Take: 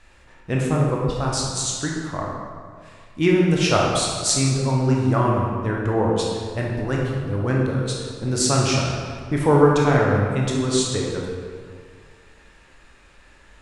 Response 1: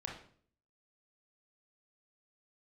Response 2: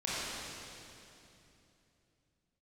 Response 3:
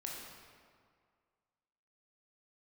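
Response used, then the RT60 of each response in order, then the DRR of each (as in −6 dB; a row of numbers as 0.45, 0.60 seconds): 3; 0.50, 3.0, 2.0 seconds; −1.0, −9.5, −3.0 decibels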